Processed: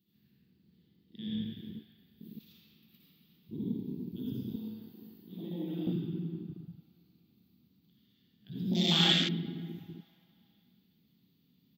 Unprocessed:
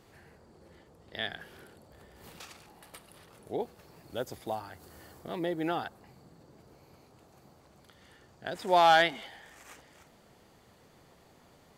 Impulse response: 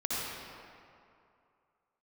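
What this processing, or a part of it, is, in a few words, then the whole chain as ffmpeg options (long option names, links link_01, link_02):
PA in a hall: -filter_complex "[0:a]highpass=100,firequalizer=gain_entry='entry(120,0);entry(180,10);entry(580,-26);entry(3700,0);entry(9500,-26);entry(14000,15)':delay=0.05:min_phase=1,equalizer=frequency=3000:width_type=o:width=0.87:gain=7,aecho=1:1:83:0.251[link_01];[1:a]atrim=start_sample=2205[link_02];[link_01][link_02]afir=irnorm=-1:irlink=0,aecho=1:1:478|956|1434:0.0631|0.0322|0.0164,afwtdn=0.0355,asettb=1/sr,asplit=3[link_03][link_04][link_05];[link_03]atrim=end=4.564[link_06];[link_04]atrim=start=4.56:end=5.87,asetpts=PTS-STARTPTS,afade=type=in:duration=0.004:curve=qsin,afade=type=out:start_time=1.306:duration=0.004:curve=qsin,highpass=frequency=610:poles=1[link_07];[link_05]atrim=start=5.866[link_08];[link_06][link_07]acrossfade=duration=0.004:curve1=hsin:curve2=qsin[link_09];[link_09][link_08]acrossfade=duration=0.004:curve1=qsin:curve2=hsin"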